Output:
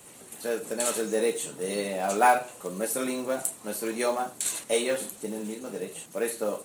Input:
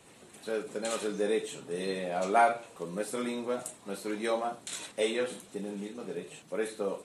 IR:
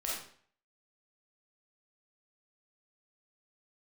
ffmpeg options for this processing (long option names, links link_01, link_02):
-af "aexciter=amount=2.6:drive=5.9:freq=5700,asetrate=46746,aresample=44100,acrusher=bits=6:mode=log:mix=0:aa=0.000001,volume=3.5dB"